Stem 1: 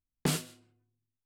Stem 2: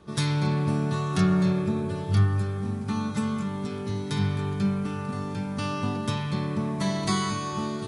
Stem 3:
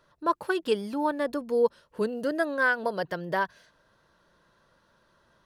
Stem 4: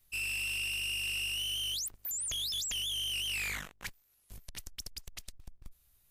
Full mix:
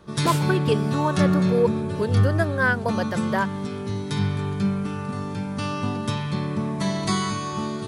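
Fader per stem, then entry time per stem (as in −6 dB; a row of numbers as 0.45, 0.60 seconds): +1.5 dB, +2.0 dB, +2.5 dB, muted; 0.00 s, 0.00 s, 0.00 s, muted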